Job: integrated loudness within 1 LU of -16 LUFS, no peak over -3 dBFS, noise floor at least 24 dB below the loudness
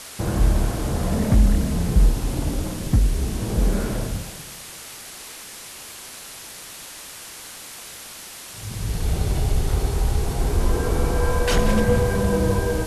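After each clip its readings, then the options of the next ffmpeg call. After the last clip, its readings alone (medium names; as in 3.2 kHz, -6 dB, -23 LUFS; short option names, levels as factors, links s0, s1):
noise floor -39 dBFS; noise floor target -47 dBFS; loudness -23.0 LUFS; peak level -5.5 dBFS; loudness target -16.0 LUFS
-> -af "afftdn=nr=8:nf=-39"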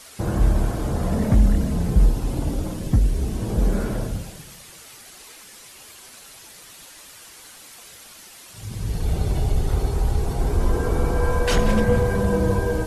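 noise floor -45 dBFS; noise floor target -47 dBFS
-> -af "afftdn=nr=6:nf=-45"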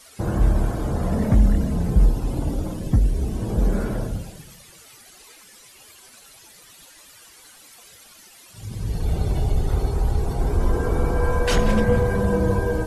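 noise floor -49 dBFS; loudness -23.0 LUFS; peak level -6.0 dBFS; loudness target -16.0 LUFS
-> -af "volume=2.24,alimiter=limit=0.708:level=0:latency=1"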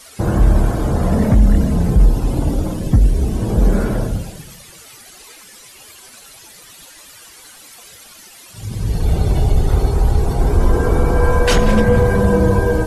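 loudness -16.5 LUFS; peak level -3.0 dBFS; noise floor -42 dBFS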